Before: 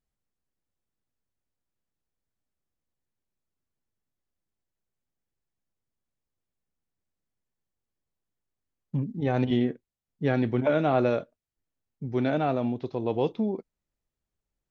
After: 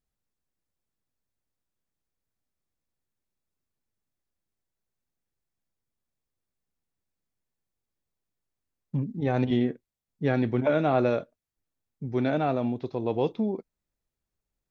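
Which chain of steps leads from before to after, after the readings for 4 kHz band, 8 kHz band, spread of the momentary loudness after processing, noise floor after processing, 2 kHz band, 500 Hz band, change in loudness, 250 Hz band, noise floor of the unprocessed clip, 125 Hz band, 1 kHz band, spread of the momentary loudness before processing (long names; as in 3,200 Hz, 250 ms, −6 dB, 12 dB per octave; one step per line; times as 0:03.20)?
−1.0 dB, can't be measured, 9 LU, below −85 dBFS, 0.0 dB, 0.0 dB, 0.0 dB, 0.0 dB, below −85 dBFS, 0.0 dB, 0.0 dB, 9 LU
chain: notch filter 3,000 Hz, Q 18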